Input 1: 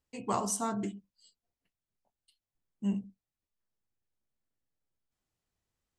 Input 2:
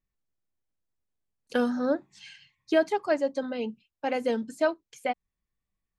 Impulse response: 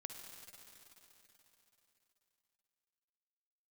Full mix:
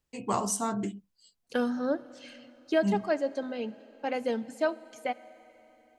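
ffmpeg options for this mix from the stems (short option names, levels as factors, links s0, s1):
-filter_complex "[0:a]volume=1.33[s0];[1:a]volume=0.596,asplit=2[s1][s2];[s2]volume=0.422[s3];[2:a]atrim=start_sample=2205[s4];[s3][s4]afir=irnorm=-1:irlink=0[s5];[s0][s1][s5]amix=inputs=3:normalize=0"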